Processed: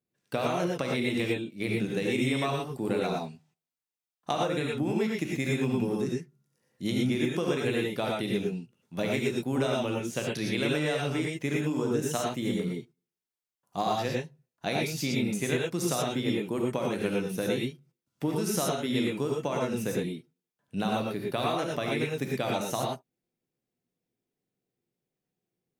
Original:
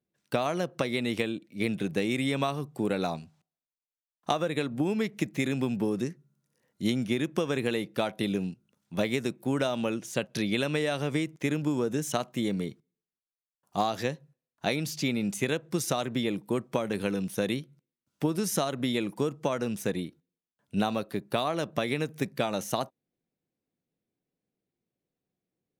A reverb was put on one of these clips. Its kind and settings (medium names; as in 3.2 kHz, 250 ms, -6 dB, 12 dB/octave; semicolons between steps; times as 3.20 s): gated-style reverb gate 140 ms rising, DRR -2 dB; trim -3.5 dB